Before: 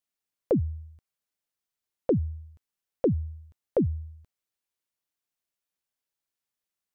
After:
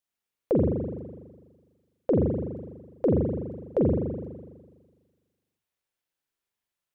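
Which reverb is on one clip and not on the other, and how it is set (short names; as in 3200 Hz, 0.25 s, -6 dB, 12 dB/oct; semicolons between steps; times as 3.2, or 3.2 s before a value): spring tank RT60 1.5 s, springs 41 ms, chirp 30 ms, DRR -2.5 dB; gain -1 dB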